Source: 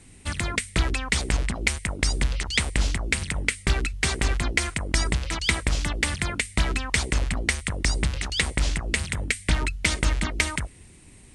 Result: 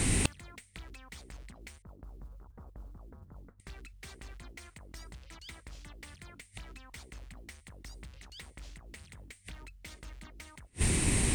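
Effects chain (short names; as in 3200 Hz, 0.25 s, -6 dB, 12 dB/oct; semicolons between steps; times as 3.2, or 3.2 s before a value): tracing distortion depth 0.048 ms; 1.82–3.6 steep low-pass 1300 Hz 48 dB/oct; in parallel at +2 dB: compressor 10:1, threshold -29 dBFS, peak gain reduction 13.5 dB; on the sum: added harmonics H 5 -12 dB, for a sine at -1.5 dBFS; flipped gate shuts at -21 dBFS, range -41 dB; modulation noise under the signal 33 dB; gain +8 dB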